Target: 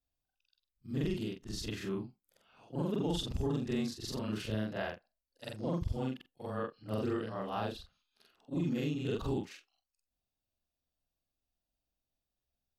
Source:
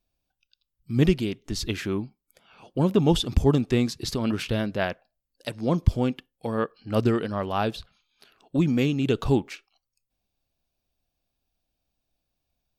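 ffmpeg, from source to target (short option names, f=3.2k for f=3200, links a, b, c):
-af "afftfilt=real='re':imag='-im':win_size=4096:overlap=0.75,alimiter=limit=-19dB:level=0:latency=1:release=38,bandreject=f=2.3k:w=10,volume=-5.5dB"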